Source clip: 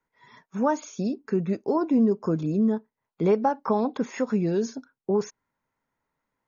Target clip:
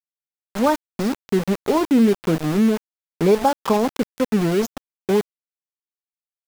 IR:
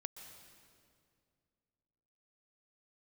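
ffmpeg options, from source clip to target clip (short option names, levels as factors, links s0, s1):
-af "aeval=exprs='val(0)*gte(abs(val(0)),0.0398)':c=same,volume=1.88"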